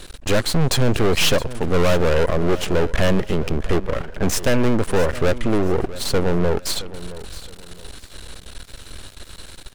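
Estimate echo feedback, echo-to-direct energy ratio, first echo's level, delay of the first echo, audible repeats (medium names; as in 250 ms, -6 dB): 31%, -15.5 dB, -16.0 dB, 667 ms, 2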